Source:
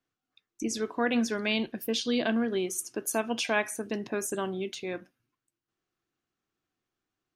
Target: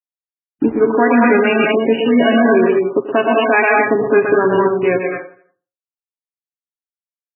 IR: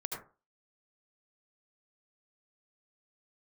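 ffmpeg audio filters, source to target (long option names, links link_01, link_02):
-filter_complex "[0:a]asettb=1/sr,asplit=3[link_01][link_02][link_03];[link_01]atrim=end=0.654[link_04];[link_02]atrim=start=0.65:end=1.57,asetpts=PTS-STARTPTS,afade=type=in:duration=0.004:curve=qsin,afade=type=out:start_time=0.916:duration=0.004:curve=qsin,acrossover=split=2600[link_05][link_06];[link_06]acompressor=threshold=-47dB:ratio=4:attack=1:release=60[link_07];[link_05][link_07]amix=inputs=2:normalize=0[link_08];[link_03]atrim=start=1.566[link_09];[link_04][link_08]acrossfade=duration=0.004:curve1=hsin:curve2=qsin[link_10];[link_10][link_09]acrossfade=duration=0.004:curve1=qsin:curve2=hsin,afwtdn=0.01,aecho=1:1:7.3:0.66,aeval=exprs='sgn(val(0))*max(abs(val(0))-0.00335,0)':channel_layout=same,asplit=2[link_11][link_12];[link_12]adelay=83,lowpass=frequency=3900:poles=1,volume=-17.5dB,asplit=2[link_13][link_14];[link_14]adelay=83,lowpass=frequency=3900:poles=1,volume=0.45,asplit=2[link_15][link_16];[link_16]adelay=83,lowpass=frequency=3900:poles=1,volume=0.45,asplit=2[link_17][link_18];[link_18]adelay=83,lowpass=frequency=3900:poles=1,volume=0.45[link_19];[link_11][link_13][link_15][link_17][link_19]amix=inputs=5:normalize=0,asplit=2[link_20][link_21];[1:a]atrim=start_sample=2205,lowshelf=frequency=450:gain=-7.5,adelay=121[link_22];[link_21][link_22]afir=irnorm=-1:irlink=0,volume=-0.5dB[link_23];[link_20][link_23]amix=inputs=2:normalize=0,alimiter=level_in=20.5dB:limit=-1dB:release=50:level=0:latency=1,volume=-2dB" -ar 16000 -c:a libmp3lame -b:a 8k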